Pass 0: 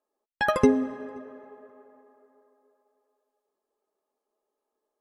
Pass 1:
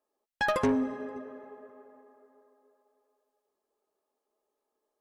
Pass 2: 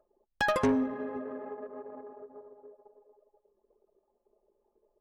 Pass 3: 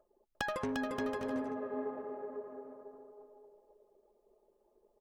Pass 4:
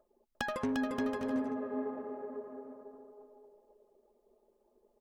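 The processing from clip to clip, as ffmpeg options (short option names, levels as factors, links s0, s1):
-af "asoftclip=type=tanh:threshold=0.0891"
-af "acompressor=mode=upward:threshold=0.0316:ratio=2.5,anlmdn=0.251"
-af "acompressor=threshold=0.02:ratio=12,aecho=1:1:350|577.5|725.4|821.5|884:0.631|0.398|0.251|0.158|0.1"
-af "equalizer=f=240:w=6.4:g=9.5"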